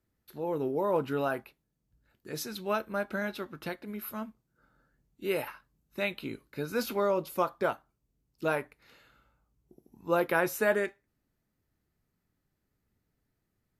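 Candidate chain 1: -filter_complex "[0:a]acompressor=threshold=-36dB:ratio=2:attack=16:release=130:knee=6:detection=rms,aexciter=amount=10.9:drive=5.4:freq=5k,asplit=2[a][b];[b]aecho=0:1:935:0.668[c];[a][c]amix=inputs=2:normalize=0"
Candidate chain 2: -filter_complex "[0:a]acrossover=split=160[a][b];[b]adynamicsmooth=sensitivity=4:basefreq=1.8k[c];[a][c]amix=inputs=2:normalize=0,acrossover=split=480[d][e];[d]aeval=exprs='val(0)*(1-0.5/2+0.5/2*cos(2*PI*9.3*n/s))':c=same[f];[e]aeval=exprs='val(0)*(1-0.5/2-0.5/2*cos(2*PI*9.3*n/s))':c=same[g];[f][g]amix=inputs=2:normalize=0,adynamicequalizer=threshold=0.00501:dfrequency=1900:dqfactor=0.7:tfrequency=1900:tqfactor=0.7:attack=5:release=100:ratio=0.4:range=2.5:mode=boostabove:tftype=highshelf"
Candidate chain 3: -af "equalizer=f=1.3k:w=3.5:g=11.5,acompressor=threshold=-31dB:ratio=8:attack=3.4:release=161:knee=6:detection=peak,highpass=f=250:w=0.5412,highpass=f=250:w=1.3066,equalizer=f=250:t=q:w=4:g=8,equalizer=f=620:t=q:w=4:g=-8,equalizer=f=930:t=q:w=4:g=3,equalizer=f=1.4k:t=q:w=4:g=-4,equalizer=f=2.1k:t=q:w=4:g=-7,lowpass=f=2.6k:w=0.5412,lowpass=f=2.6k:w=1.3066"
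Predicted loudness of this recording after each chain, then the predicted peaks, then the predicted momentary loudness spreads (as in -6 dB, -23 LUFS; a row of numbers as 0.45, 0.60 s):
-27.0, -34.5, -40.5 LUFS; -4.5, -13.0, -24.0 dBFS; 18, 15, 13 LU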